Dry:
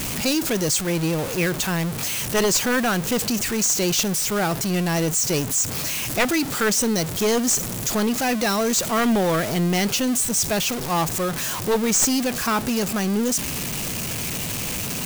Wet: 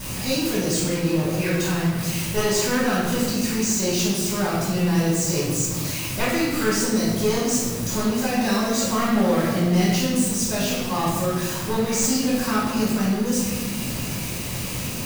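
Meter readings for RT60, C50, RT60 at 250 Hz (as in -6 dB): 1.4 s, -0.5 dB, 2.7 s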